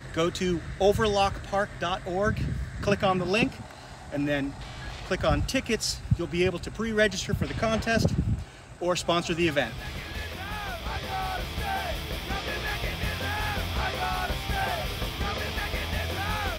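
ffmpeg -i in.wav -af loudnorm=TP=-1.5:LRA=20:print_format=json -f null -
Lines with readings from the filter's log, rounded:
"input_i" : "-28.6",
"input_tp" : "-9.9",
"input_lra" : "2.8",
"input_thresh" : "-38.7",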